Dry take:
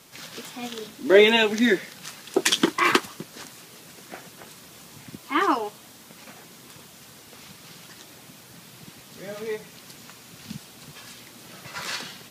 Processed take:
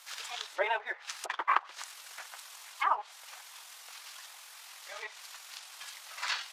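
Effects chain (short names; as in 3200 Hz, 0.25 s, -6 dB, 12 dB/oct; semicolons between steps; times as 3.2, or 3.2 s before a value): treble ducked by the level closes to 1000 Hz, closed at -20.5 dBFS; inverse Chebyshev high-pass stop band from 230 Hz, stop band 60 dB; in parallel at -10.5 dB: crossover distortion -43 dBFS; on the sum: granular stretch 0.53×, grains 46 ms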